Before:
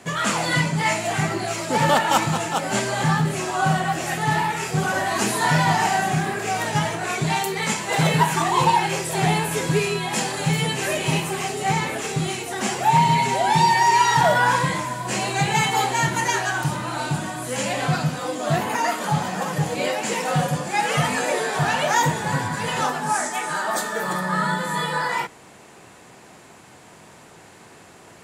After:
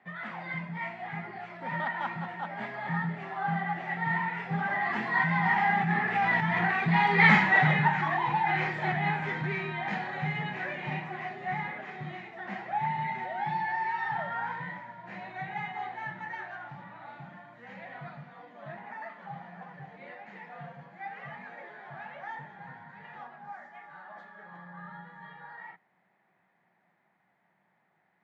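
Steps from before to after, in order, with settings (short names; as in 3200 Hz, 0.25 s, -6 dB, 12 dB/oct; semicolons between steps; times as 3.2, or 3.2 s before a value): Doppler pass-by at 7.29, 17 m/s, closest 1.7 m; dynamic EQ 560 Hz, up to -7 dB, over -58 dBFS, Q 1.6; in parallel at +1 dB: negative-ratio compressor -47 dBFS, ratio -0.5; on the sum: soft clip -24 dBFS, distortion -13 dB; speaker cabinet 170–3000 Hz, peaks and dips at 180 Hz +9 dB, 290 Hz -7 dB, 450 Hz -7 dB, 790 Hz +6 dB, 1900 Hz +10 dB, 2800 Hz -6 dB; gain +8.5 dB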